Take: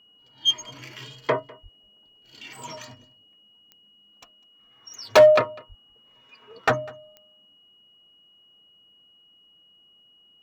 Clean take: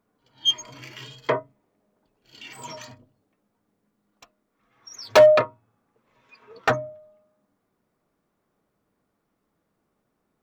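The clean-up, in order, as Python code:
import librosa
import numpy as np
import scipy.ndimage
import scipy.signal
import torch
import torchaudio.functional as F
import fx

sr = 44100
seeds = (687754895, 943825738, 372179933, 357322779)

y = fx.fix_declick_ar(x, sr, threshold=10.0)
y = fx.notch(y, sr, hz=2900.0, q=30.0)
y = fx.highpass(y, sr, hz=140.0, slope=24, at=(1.62, 1.74), fade=0.02)
y = fx.highpass(y, sr, hz=140.0, slope=24, at=(5.68, 5.8), fade=0.02)
y = fx.fix_echo_inverse(y, sr, delay_ms=200, level_db=-23.5)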